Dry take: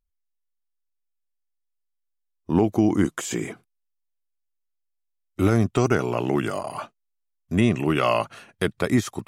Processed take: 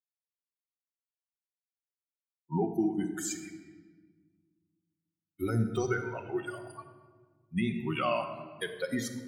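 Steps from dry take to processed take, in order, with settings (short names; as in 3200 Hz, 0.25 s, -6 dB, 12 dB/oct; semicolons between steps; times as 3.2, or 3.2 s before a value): per-bin expansion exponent 3; low shelf 140 Hz -11.5 dB; limiter -21.5 dBFS, peak gain reduction 6.5 dB; shoebox room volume 1500 m³, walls mixed, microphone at 1 m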